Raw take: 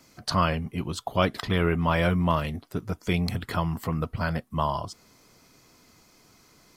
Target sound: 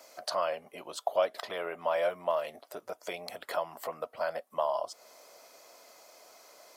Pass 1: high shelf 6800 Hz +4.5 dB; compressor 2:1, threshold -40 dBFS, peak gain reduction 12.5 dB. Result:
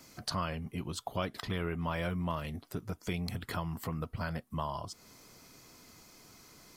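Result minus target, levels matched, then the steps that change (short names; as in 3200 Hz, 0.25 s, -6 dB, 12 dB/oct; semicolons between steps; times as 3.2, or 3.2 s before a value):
500 Hz band -6.5 dB
add after compressor: resonant high-pass 600 Hz, resonance Q 4.8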